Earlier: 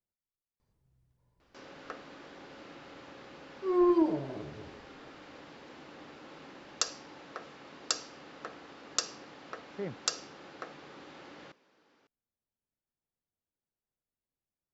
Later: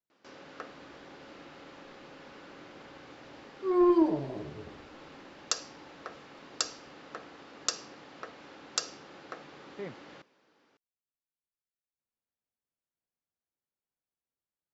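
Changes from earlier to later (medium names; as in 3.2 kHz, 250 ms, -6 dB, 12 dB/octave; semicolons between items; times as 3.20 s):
speech: add tilt EQ +2 dB/octave; first sound: entry -1.30 s; second sound: send on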